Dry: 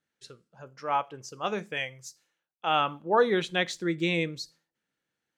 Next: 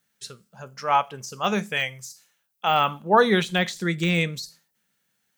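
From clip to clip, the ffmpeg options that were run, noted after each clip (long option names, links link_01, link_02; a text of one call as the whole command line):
ffmpeg -i in.wav -af "aemphasis=mode=production:type=50kf,deesser=0.9,equalizer=frequency=200:width_type=o:width=0.33:gain=6,equalizer=frequency=315:width_type=o:width=0.33:gain=-11,equalizer=frequency=500:width_type=o:width=0.33:gain=-4,volume=7dB" out.wav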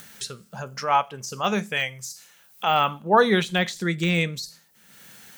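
ffmpeg -i in.wav -af "acompressor=mode=upward:threshold=-26dB:ratio=2.5" out.wav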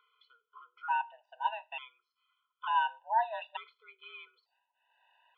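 ffmpeg -i in.wav -filter_complex "[0:a]asplit=3[link_01][link_02][link_03];[link_01]bandpass=frequency=730:width_type=q:width=8,volume=0dB[link_04];[link_02]bandpass=frequency=1090:width_type=q:width=8,volume=-6dB[link_05];[link_03]bandpass=frequency=2440:width_type=q:width=8,volume=-9dB[link_06];[link_04][link_05][link_06]amix=inputs=3:normalize=0,highpass=frequency=260:width_type=q:width=0.5412,highpass=frequency=260:width_type=q:width=1.307,lowpass=frequency=3200:width_type=q:width=0.5176,lowpass=frequency=3200:width_type=q:width=0.7071,lowpass=frequency=3200:width_type=q:width=1.932,afreqshift=230,afftfilt=real='re*gt(sin(2*PI*0.56*pts/sr)*(1-2*mod(floor(b*sr/1024/500),2)),0)':imag='im*gt(sin(2*PI*0.56*pts/sr)*(1-2*mod(floor(b*sr/1024/500),2)),0)':win_size=1024:overlap=0.75" out.wav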